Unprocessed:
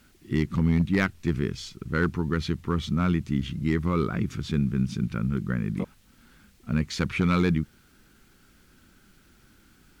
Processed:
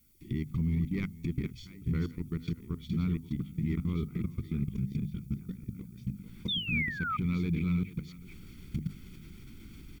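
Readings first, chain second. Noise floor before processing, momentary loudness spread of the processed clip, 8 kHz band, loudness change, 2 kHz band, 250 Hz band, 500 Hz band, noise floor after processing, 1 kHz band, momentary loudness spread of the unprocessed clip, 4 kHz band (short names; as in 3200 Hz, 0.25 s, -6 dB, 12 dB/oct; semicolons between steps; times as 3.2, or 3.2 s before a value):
-59 dBFS, 19 LU, n/a, -7.0 dB, -5.5 dB, -7.0 dB, -14.0 dB, -50 dBFS, -8.5 dB, 7 LU, -0.5 dB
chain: reverse delay 0.683 s, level -7 dB; recorder AGC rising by 63 dB/s; tone controls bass +4 dB, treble -9 dB; echo 0.44 s -8.5 dB; level quantiser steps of 21 dB; band shelf 980 Hz -11.5 dB; limiter -17 dBFS, peak gain reduction 7 dB; painted sound fall, 6.48–7.17, 1200–3700 Hz -27 dBFS; notches 50/100/150/200/250 Hz; added noise violet -60 dBFS; comb 0.9 ms, depth 53%; gain -7.5 dB; Vorbis 192 kbps 48000 Hz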